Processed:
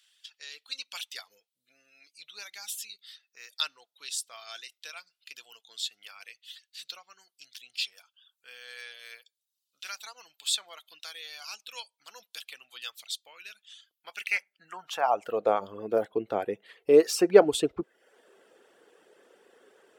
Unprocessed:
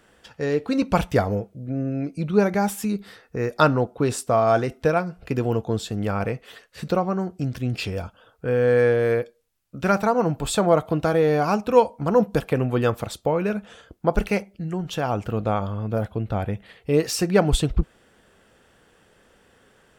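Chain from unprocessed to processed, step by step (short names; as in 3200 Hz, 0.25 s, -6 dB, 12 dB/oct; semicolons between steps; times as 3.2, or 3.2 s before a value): reverb removal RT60 0.63 s; high-pass sweep 3600 Hz -> 390 Hz, 13.91–15.58; gain -3.5 dB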